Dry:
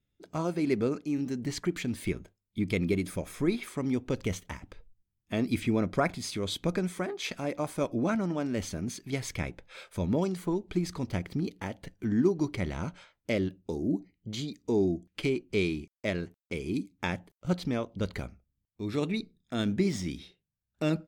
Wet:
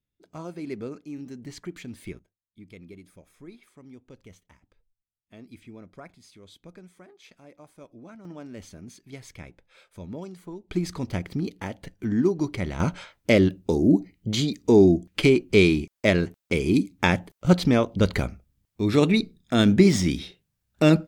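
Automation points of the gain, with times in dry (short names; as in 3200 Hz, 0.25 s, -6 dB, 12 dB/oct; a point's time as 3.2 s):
-6.5 dB
from 2.19 s -17.5 dB
from 8.25 s -9 dB
from 10.71 s +3 dB
from 12.8 s +11 dB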